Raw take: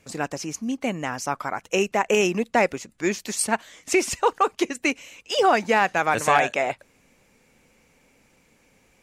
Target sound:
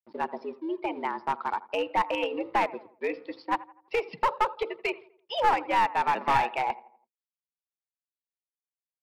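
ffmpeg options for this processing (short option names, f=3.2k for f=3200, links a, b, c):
-filter_complex "[0:a]bandreject=f=630:w=13,afftdn=nr=29:nf=-33,bandreject=f=60:t=h:w=6,bandreject=f=120:t=h:w=6,bandreject=f=180:t=h:w=6,bandreject=f=240:t=h:w=6,bandreject=f=300:t=h:w=6,bandreject=f=360:t=h:w=6,bandreject=f=420:t=h:w=6,bandreject=f=480:t=h:w=6,asplit=2[a][b];[b]acompressor=threshold=-28dB:ratio=8,volume=2dB[c];[a][c]amix=inputs=2:normalize=0,afreqshift=95,aresample=11025,aeval=exprs='sgn(val(0))*max(abs(val(0))-0.00531,0)':c=same,aresample=44100,highpass=f=110:w=0.5412,highpass=f=110:w=1.3066,equalizer=f=110:t=q:w=4:g=4,equalizer=f=280:t=q:w=4:g=-4,equalizer=f=580:t=q:w=4:g=-4,equalizer=f=910:t=q:w=4:g=8,equalizer=f=1.6k:t=q:w=4:g=-6,equalizer=f=2.9k:t=q:w=4:g=-4,lowpass=f=4.1k:w=0.5412,lowpass=f=4.1k:w=1.3066,asplit=2[d][e];[e]adelay=83,lowpass=f=1.9k:p=1,volume=-18.5dB,asplit=2[f][g];[g]adelay=83,lowpass=f=1.9k:p=1,volume=0.46,asplit=2[h][i];[i]adelay=83,lowpass=f=1.9k:p=1,volume=0.46,asplit=2[j][k];[k]adelay=83,lowpass=f=1.9k:p=1,volume=0.46[l];[d][f][h][j][l]amix=inputs=5:normalize=0,aeval=exprs='clip(val(0),-1,0.178)':c=same,volume=-7.5dB"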